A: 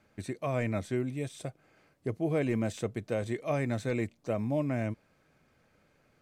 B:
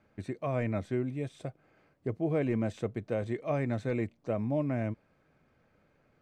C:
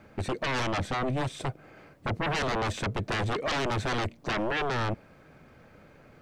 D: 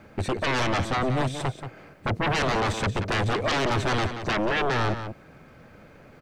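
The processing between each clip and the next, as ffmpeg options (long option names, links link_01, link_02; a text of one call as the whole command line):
ffmpeg -i in.wav -af "lowpass=frequency=2000:poles=1" out.wav
ffmpeg -i in.wav -af "aeval=exprs='0.106*sin(PI/2*6.31*val(0)/0.106)':channel_layout=same,volume=-6dB" out.wav
ffmpeg -i in.wav -filter_complex "[0:a]asplit=2[link_01][link_02];[link_02]adelay=180.8,volume=-9dB,highshelf=frequency=4000:gain=-4.07[link_03];[link_01][link_03]amix=inputs=2:normalize=0,volume=4dB" out.wav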